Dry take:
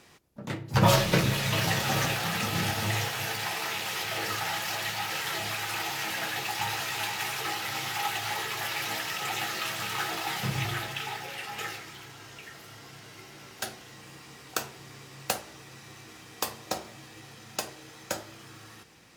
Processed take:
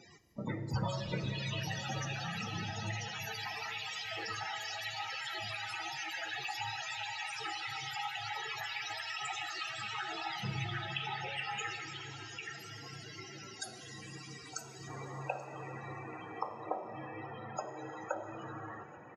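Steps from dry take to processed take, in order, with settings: bell 9700 Hz +8.5 dB 2.3 oct, from 14.88 s 790 Hz; compressor 10:1, threshold -33 dBFS, peak gain reduction 18 dB; loudest bins only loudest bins 32; echo 0.833 s -22 dB; reverb RT60 4.0 s, pre-delay 26 ms, DRR 9.5 dB; gain +1.5 dB

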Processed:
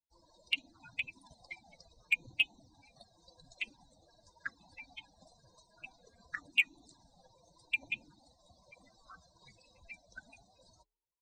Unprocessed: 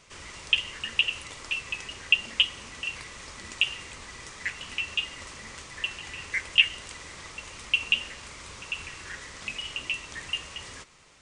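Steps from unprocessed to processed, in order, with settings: per-bin expansion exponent 3; resonant high shelf 5300 Hz -6.5 dB, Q 1.5; de-hum 389.2 Hz, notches 3; in parallel at -6 dB: overloaded stage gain 19 dB; on the sum: frequency shift -350 Hz; envelope flanger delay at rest 2.1 ms, full sweep at -27 dBFS; gain -5 dB

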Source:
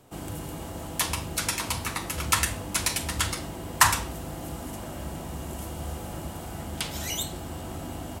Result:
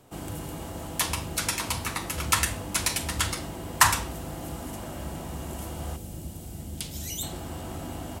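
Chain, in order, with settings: 5.96–7.23 bell 1200 Hz -15 dB 2.5 oct

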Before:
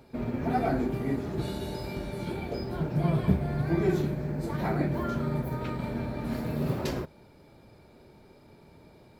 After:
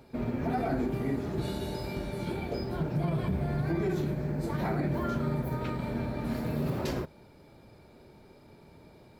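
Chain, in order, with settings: limiter -21.5 dBFS, peak gain reduction 9.5 dB

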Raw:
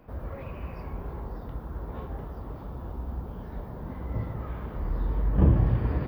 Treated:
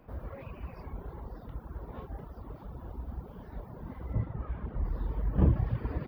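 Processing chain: reverb removal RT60 1.1 s; 4.13–4.85 tone controls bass +5 dB, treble -13 dB; gain -3 dB

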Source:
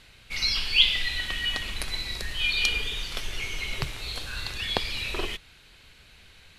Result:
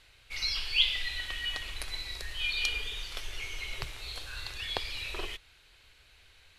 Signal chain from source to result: bell 190 Hz -12 dB 1 oct; gain -6 dB

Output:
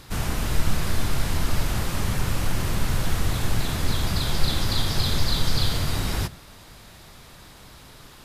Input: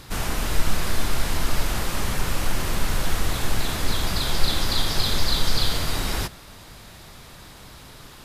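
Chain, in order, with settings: dynamic EQ 110 Hz, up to +8 dB, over -43 dBFS, Q 0.7; gain -2.5 dB

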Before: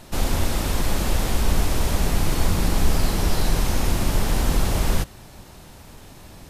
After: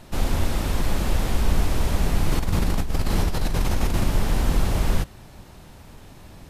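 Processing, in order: tone controls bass +2 dB, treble -4 dB; 2.31–4.04 negative-ratio compressor -18 dBFS, ratio -1; gain -2 dB

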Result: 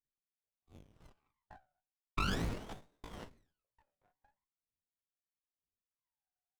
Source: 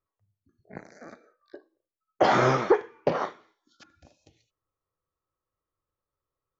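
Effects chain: pitch shift +10 st; wah 0.43 Hz 730–3800 Hz, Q 21; in parallel at -11.5 dB: crossover distortion -58 dBFS; on the sum: limiter -25 dBFS, peak gain reduction 7.5 dB; running maximum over 17 samples; gain +4 dB

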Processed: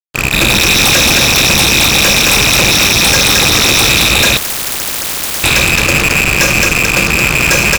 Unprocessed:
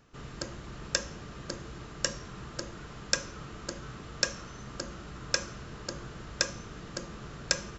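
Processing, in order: rattling part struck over -43 dBFS, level -11 dBFS; echoes that change speed 0.224 s, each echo +7 st, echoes 2; on a send: feedback echo 0.22 s, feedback 32%, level -6 dB; on the sum: fuzz box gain 43 dB, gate -42 dBFS; 4.37–5.44 spectral compressor 10:1; gain +6.5 dB

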